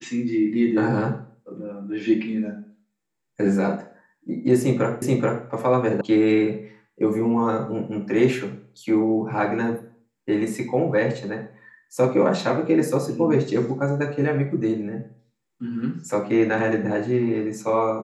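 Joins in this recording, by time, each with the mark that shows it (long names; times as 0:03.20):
0:05.02: the same again, the last 0.43 s
0:06.01: cut off before it has died away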